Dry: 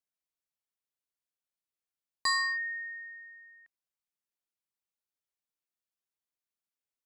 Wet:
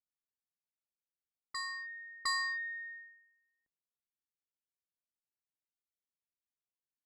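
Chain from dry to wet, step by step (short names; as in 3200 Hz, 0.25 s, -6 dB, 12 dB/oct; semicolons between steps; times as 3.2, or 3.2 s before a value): low-pass opened by the level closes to 320 Hz, open at -33 dBFS; reverse echo 0.709 s -6.5 dB; added harmonics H 2 -26 dB, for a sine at -22 dBFS; gain -5 dB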